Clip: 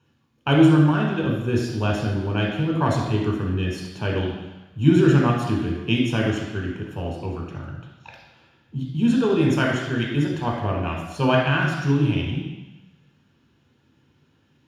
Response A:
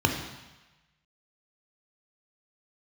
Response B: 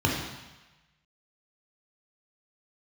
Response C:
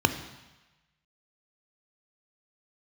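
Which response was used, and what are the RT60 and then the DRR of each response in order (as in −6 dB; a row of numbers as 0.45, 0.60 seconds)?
B; 1.1, 1.1, 1.1 seconds; 3.5, −1.5, 9.5 decibels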